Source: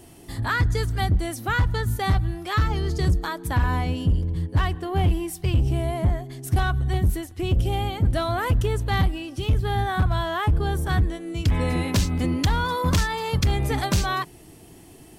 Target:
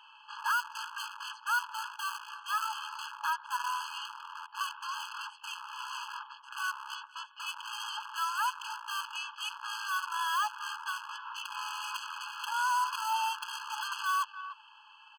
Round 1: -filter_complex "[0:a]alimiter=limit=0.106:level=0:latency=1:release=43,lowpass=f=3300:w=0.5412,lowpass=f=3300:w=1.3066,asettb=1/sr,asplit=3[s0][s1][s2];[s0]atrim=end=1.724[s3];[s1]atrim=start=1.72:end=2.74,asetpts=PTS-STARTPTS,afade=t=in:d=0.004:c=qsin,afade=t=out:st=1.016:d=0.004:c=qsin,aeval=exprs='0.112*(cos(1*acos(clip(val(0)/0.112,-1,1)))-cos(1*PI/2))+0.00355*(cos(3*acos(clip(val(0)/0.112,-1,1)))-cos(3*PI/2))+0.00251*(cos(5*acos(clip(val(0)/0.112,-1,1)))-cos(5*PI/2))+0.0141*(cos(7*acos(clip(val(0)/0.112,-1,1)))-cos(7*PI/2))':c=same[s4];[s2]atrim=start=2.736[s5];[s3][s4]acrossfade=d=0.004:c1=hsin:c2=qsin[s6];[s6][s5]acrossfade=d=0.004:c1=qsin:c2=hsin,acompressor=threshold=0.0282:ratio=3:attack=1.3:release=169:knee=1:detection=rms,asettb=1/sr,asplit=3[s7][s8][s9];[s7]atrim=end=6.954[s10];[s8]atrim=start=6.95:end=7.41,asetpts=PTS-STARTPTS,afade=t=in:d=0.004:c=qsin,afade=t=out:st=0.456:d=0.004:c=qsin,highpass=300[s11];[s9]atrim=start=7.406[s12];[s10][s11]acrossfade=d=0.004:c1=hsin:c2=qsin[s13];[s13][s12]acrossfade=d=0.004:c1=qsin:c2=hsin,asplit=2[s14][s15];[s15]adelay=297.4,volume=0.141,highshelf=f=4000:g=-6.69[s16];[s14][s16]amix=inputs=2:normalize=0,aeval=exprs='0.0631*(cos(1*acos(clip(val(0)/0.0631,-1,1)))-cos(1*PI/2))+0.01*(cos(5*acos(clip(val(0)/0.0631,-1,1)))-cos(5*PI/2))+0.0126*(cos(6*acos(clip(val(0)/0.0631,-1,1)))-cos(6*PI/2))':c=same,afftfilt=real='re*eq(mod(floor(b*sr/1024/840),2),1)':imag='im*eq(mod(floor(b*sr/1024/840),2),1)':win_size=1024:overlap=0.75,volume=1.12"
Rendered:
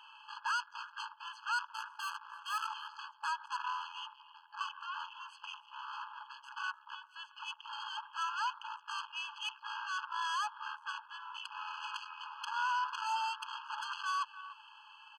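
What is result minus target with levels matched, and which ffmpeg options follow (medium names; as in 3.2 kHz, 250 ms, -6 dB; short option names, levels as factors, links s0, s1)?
compression: peak gain reduction +7.5 dB
-filter_complex "[0:a]alimiter=limit=0.106:level=0:latency=1:release=43,lowpass=f=3300:w=0.5412,lowpass=f=3300:w=1.3066,asettb=1/sr,asplit=3[s0][s1][s2];[s0]atrim=end=1.724[s3];[s1]atrim=start=1.72:end=2.74,asetpts=PTS-STARTPTS,afade=t=in:d=0.004:c=qsin,afade=t=out:st=1.016:d=0.004:c=qsin,aeval=exprs='0.112*(cos(1*acos(clip(val(0)/0.112,-1,1)))-cos(1*PI/2))+0.00355*(cos(3*acos(clip(val(0)/0.112,-1,1)))-cos(3*PI/2))+0.00251*(cos(5*acos(clip(val(0)/0.112,-1,1)))-cos(5*PI/2))+0.0141*(cos(7*acos(clip(val(0)/0.112,-1,1)))-cos(7*PI/2))':c=same[s4];[s2]atrim=start=2.736[s5];[s3][s4]acrossfade=d=0.004:c1=hsin:c2=qsin[s6];[s6][s5]acrossfade=d=0.004:c1=qsin:c2=hsin,asettb=1/sr,asplit=3[s7][s8][s9];[s7]atrim=end=6.954[s10];[s8]atrim=start=6.95:end=7.41,asetpts=PTS-STARTPTS,afade=t=in:d=0.004:c=qsin,afade=t=out:st=0.456:d=0.004:c=qsin,highpass=300[s11];[s9]atrim=start=7.406[s12];[s10][s11]acrossfade=d=0.004:c1=hsin:c2=qsin[s13];[s13][s12]acrossfade=d=0.004:c1=qsin:c2=hsin,asplit=2[s14][s15];[s15]adelay=297.4,volume=0.141,highshelf=f=4000:g=-6.69[s16];[s14][s16]amix=inputs=2:normalize=0,aeval=exprs='0.0631*(cos(1*acos(clip(val(0)/0.0631,-1,1)))-cos(1*PI/2))+0.01*(cos(5*acos(clip(val(0)/0.0631,-1,1)))-cos(5*PI/2))+0.0126*(cos(6*acos(clip(val(0)/0.0631,-1,1)))-cos(6*PI/2))':c=same,afftfilt=real='re*eq(mod(floor(b*sr/1024/840),2),1)':imag='im*eq(mod(floor(b*sr/1024/840),2),1)':win_size=1024:overlap=0.75,volume=1.12"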